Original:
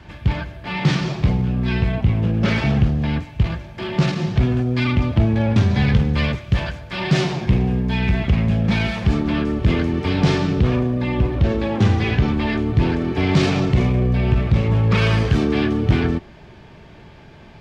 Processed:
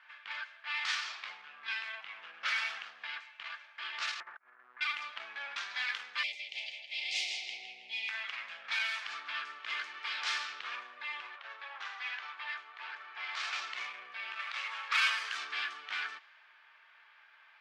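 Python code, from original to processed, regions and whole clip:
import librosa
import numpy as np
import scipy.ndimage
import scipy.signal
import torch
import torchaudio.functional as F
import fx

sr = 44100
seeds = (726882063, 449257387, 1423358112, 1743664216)

y = fx.chain(x, sr, fx.steep_lowpass(hz=1800.0, slope=36),
    fx.over_compress(threshold_db=-23.0, ratio=-0.5),
    fx.power_curve(exponent=1.4), at=(4.2, 4.81))
y = fx.chain(y, sr, fx.cheby1_bandstop(low_hz=800.0, high_hz=2100.0, order=4),
    fx.echo_feedback(ms=161, feedback_pct=50, wet_db=-6), at=(6.23, 8.09))
y = fx.chain(y, sr, fx.highpass(hz=720.0, slope=12),
    fx.tilt_shelf(db=7.0, hz=930.0), at=(11.36, 13.53))
y = fx.chain(y, sr, fx.highpass(hz=630.0, slope=12),
    fx.leveller(passes=1), at=(14.39, 15.1))
y = scipy.signal.sosfilt(scipy.signal.cheby1(3, 1.0, 1300.0, 'highpass', fs=sr, output='sos'), y)
y = fx.env_lowpass(y, sr, base_hz=2300.0, full_db=-24.5)
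y = F.gain(torch.from_numpy(y), -5.5).numpy()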